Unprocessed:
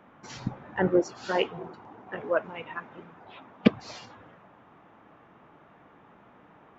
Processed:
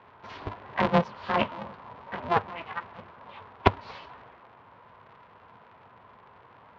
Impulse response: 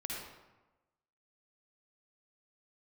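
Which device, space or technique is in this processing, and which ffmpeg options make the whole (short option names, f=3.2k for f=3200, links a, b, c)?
ring modulator pedal into a guitar cabinet: -af "aeval=exprs='val(0)*sgn(sin(2*PI*170*n/s))':c=same,highpass=89,equalizer=f=100:t=q:w=4:g=8,equalizer=f=220:t=q:w=4:g=3,equalizer=f=320:t=q:w=4:g=-9,equalizer=f=980:t=q:w=4:g=8,lowpass=f=3.7k:w=0.5412,lowpass=f=3.7k:w=1.3066"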